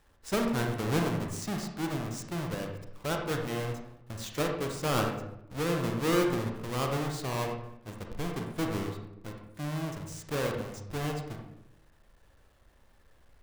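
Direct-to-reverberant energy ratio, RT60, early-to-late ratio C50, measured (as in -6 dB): 2.0 dB, 0.85 s, 4.0 dB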